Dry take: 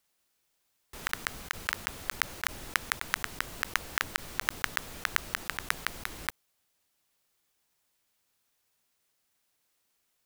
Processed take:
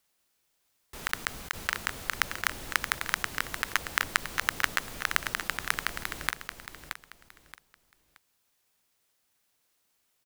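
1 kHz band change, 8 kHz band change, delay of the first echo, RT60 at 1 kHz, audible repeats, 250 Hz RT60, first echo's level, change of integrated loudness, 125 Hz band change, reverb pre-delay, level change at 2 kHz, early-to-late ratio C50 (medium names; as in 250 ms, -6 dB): +2.0 dB, +2.0 dB, 625 ms, no reverb, 3, no reverb, -8.0 dB, +2.0 dB, +2.0 dB, no reverb, +2.0 dB, no reverb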